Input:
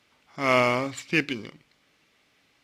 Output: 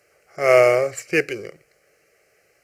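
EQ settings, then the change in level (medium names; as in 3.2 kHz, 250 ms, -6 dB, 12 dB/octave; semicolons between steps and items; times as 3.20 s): peaking EQ 450 Hz +12 dB 1.7 oct; treble shelf 3.5 kHz +10 dB; static phaser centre 960 Hz, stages 6; +1.5 dB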